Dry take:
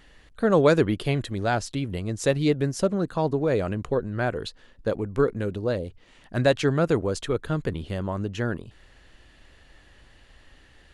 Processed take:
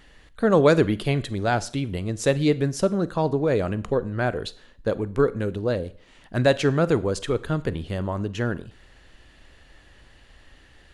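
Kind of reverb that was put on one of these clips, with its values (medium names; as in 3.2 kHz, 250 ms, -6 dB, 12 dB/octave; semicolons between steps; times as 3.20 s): Schroeder reverb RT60 0.48 s, combs from 33 ms, DRR 17 dB; trim +1.5 dB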